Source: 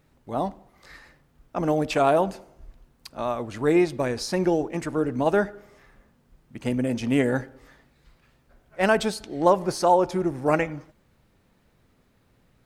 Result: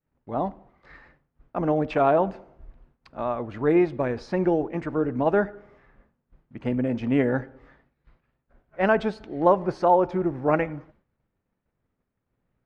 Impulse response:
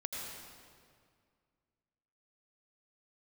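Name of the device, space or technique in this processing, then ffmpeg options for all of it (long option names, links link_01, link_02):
hearing-loss simulation: -af "lowpass=2100,agate=range=-33dB:threshold=-52dB:ratio=3:detection=peak"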